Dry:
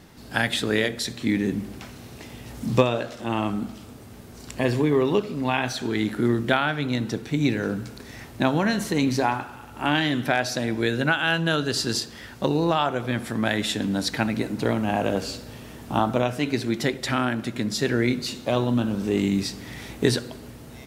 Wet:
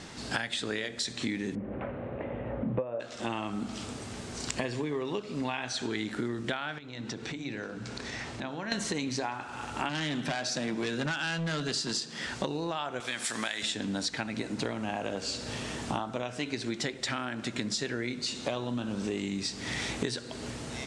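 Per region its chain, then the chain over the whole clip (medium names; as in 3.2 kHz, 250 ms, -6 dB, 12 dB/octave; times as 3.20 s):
1.55–3.00 s: Gaussian low-pass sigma 4.9 samples + peaking EQ 550 Hz +14 dB 0.32 oct
6.78–8.72 s: compression 5:1, threshold -38 dBFS + distance through air 56 m + hum notches 50/100/150/200/250/300/350/400/450 Hz
9.89–12.27 s: resonant low shelf 110 Hz -11 dB, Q 3 + hard clipper -19.5 dBFS
13.00–13.63 s: tilt EQ +4 dB/octave + compression 2:1, threshold -27 dBFS
whole clip: steep low-pass 8.7 kHz 36 dB/octave; tilt EQ +1.5 dB/octave; compression 16:1, threshold -35 dBFS; trim +6 dB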